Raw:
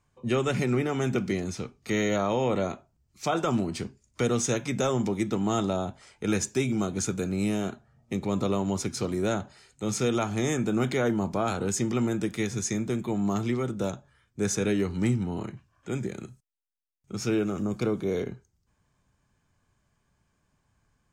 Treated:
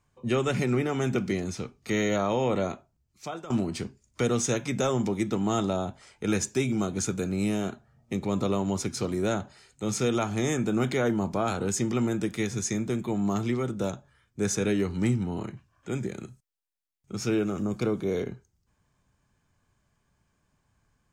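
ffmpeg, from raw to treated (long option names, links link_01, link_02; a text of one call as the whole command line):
ffmpeg -i in.wav -filter_complex "[0:a]asplit=2[link_01][link_02];[link_01]atrim=end=3.5,asetpts=PTS-STARTPTS,afade=type=out:start_time=2.7:duration=0.8:silence=0.141254[link_03];[link_02]atrim=start=3.5,asetpts=PTS-STARTPTS,afade=type=in:duration=0.004:curve=hsin:silence=0.141254[link_04];[link_03][link_04]concat=n=2:v=0:a=1" out.wav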